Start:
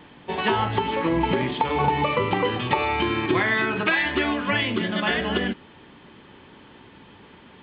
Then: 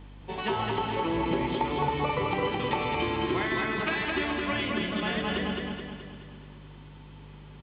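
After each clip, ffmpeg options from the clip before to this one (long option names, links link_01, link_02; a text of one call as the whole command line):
ffmpeg -i in.wav -af "equalizer=frequency=1700:width_type=o:width=0.31:gain=-4,aeval=exprs='val(0)+0.0126*(sin(2*PI*50*n/s)+sin(2*PI*2*50*n/s)/2+sin(2*PI*3*50*n/s)/3+sin(2*PI*4*50*n/s)/4+sin(2*PI*5*50*n/s)/5)':channel_layout=same,aecho=1:1:213|426|639|852|1065|1278|1491:0.708|0.368|0.191|0.0995|0.0518|0.0269|0.014,volume=-7.5dB" out.wav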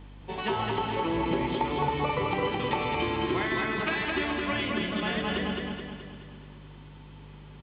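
ffmpeg -i in.wav -af anull out.wav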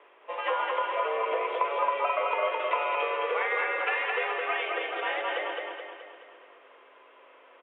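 ffmpeg -i in.wav -af "highpass=frequency=360:width_type=q:width=0.5412,highpass=frequency=360:width_type=q:width=1.307,lowpass=frequency=2700:width_type=q:width=0.5176,lowpass=frequency=2700:width_type=q:width=0.7071,lowpass=frequency=2700:width_type=q:width=1.932,afreqshift=120,volume=2dB" out.wav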